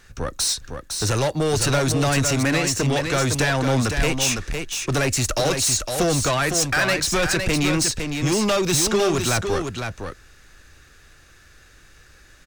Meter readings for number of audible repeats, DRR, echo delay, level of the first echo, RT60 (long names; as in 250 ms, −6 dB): 1, no reverb audible, 508 ms, −6.0 dB, no reverb audible